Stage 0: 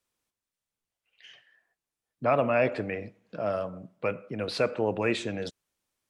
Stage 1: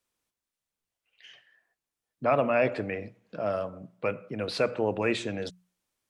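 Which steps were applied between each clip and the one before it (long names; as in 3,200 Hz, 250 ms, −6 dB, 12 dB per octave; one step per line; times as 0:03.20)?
mains-hum notches 60/120/180 Hz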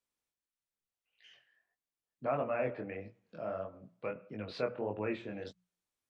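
treble cut that deepens with the level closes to 2,100 Hz, closed at −26 dBFS
chorus effect 1.6 Hz, delay 18.5 ms, depth 6.3 ms
level −6 dB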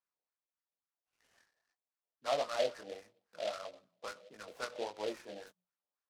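LFO wah 3.7 Hz 560–1,600 Hz, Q 2.2
short delay modulated by noise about 3,000 Hz, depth 0.068 ms
level +3.5 dB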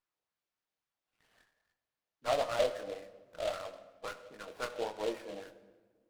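rectangular room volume 1,300 cubic metres, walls mixed, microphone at 0.52 metres
windowed peak hold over 5 samples
level +2.5 dB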